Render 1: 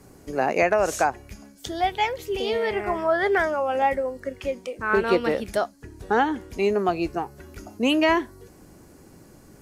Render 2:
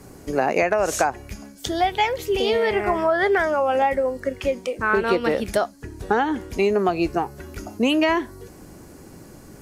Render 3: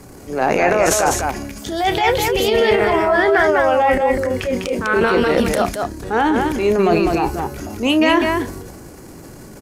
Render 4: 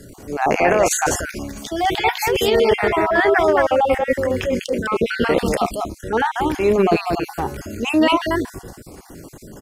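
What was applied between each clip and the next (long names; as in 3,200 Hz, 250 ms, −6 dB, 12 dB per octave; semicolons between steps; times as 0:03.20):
downward compressor 5 to 1, threshold −22 dBFS, peak gain reduction 7 dB; level +6 dB
transient designer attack −9 dB, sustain +9 dB; loudspeakers that aren't time-aligned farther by 11 metres −12 dB, 69 metres −4 dB; level +4 dB
time-frequency cells dropped at random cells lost 31%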